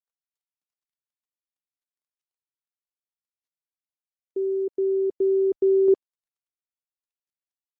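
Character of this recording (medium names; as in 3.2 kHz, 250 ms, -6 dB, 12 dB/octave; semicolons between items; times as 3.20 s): a quantiser's noise floor 12-bit, dither none; tremolo saw down 0.51 Hz, depth 35%; Opus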